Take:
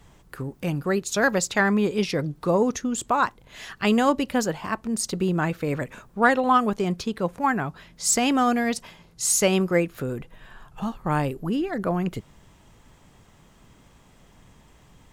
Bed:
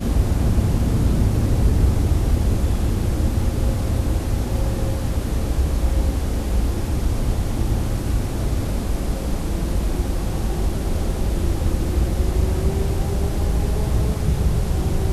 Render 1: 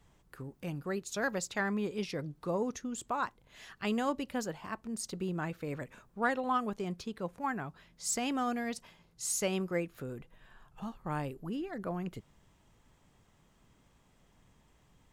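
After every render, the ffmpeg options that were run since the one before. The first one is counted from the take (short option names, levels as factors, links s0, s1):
-af "volume=0.251"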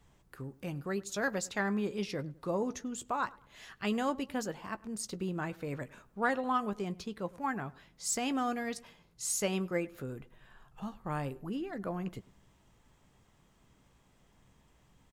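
-filter_complex "[0:a]asplit=2[s0][s1];[s1]adelay=15,volume=0.224[s2];[s0][s2]amix=inputs=2:normalize=0,asplit=2[s3][s4];[s4]adelay=102,lowpass=f=2000:p=1,volume=0.0891,asplit=2[s5][s6];[s6]adelay=102,lowpass=f=2000:p=1,volume=0.38,asplit=2[s7][s8];[s8]adelay=102,lowpass=f=2000:p=1,volume=0.38[s9];[s3][s5][s7][s9]amix=inputs=4:normalize=0"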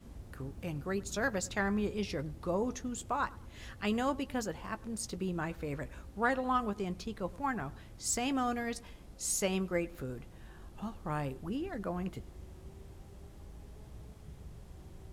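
-filter_complex "[1:a]volume=0.0316[s0];[0:a][s0]amix=inputs=2:normalize=0"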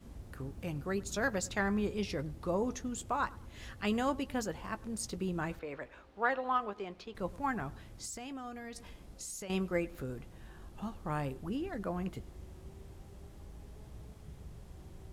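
-filter_complex "[0:a]asettb=1/sr,asplit=3[s0][s1][s2];[s0]atrim=end=5.594[s3];[s1]atrim=start=5.59:end=7.15,asetpts=PTS-STARTPTS,afade=t=in:d=0.004:c=qsin,afade=t=out:st=1.556:d=0.004:c=qsin,acrossover=split=340 4400:gain=0.178 1 0.141[s4][s5][s6];[s4][s5][s6]amix=inputs=3:normalize=0[s7];[s2]atrim=start=7.146[s8];[s3][s7]acrossfade=d=0.004:c1=hsin:c2=qsin[s9];[s9][s8]acrossfade=d=0.004:c1=qsin:c2=hsin,asettb=1/sr,asplit=3[s10][s11][s12];[s10]atrim=end=8.054[s13];[s11]atrim=start=8.05:end=9.5,asetpts=PTS-STARTPTS,afade=t=in:d=0.004:c=qsin,afade=t=out:st=1.446:d=0.004:c=qsin,acompressor=threshold=0.00891:ratio=5:attack=3.2:release=140:knee=1:detection=peak[s14];[s12]atrim=start=9.496[s15];[s13][s14]acrossfade=d=0.004:c1=hsin:c2=qsin[s16];[s16][s15]acrossfade=d=0.004:c1=qsin:c2=hsin"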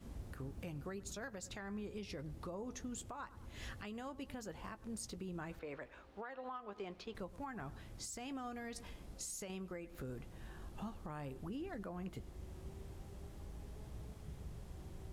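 -af "acompressor=threshold=0.0158:ratio=6,alimiter=level_in=3.98:limit=0.0631:level=0:latency=1:release=415,volume=0.251"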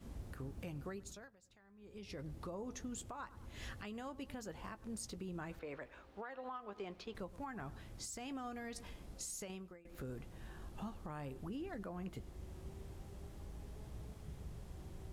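-filter_complex "[0:a]asplit=4[s0][s1][s2][s3];[s0]atrim=end=1.35,asetpts=PTS-STARTPTS,afade=t=out:st=0.9:d=0.45:silence=0.1[s4];[s1]atrim=start=1.35:end=1.77,asetpts=PTS-STARTPTS,volume=0.1[s5];[s2]atrim=start=1.77:end=9.85,asetpts=PTS-STARTPTS,afade=t=in:d=0.45:silence=0.1,afade=t=out:st=7.67:d=0.41:silence=0.1[s6];[s3]atrim=start=9.85,asetpts=PTS-STARTPTS,afade=t=in:d=0.004:c=hsin:silence=0.1[s7];[s4][s5][s6][s7]concat=n=4:v=0:a=1"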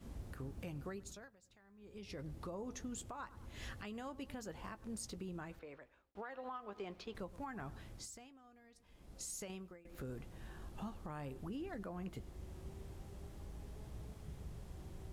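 -filter_complex "[0:a]asplit=4[s0][s1][s2][s3];[s0]atrim=end=6.15,asetpts=PTS-STARTPTS,afade=t=out:st=5.23:d=0.92[s4];[s1]atrim=start=6.15:end=8.32,asetpts=PTS-STARTPTS,afade=t=in:d=0.004:c=hsin,afade=t=out:st=1.74:d=0.43:silence=0.125893[s5];[s2]atrim=start=8.32:end=8.87,asetpts=PTS-STARTPTS,volume=0.126[s6];[s3]atrim=start=8.87,asetpts=PTS-STARTPTS,afade=t=in:d=0.43:silence=0.125893[s7];[s4][s5][s6][s7]concat=n=4:v=0:a=1"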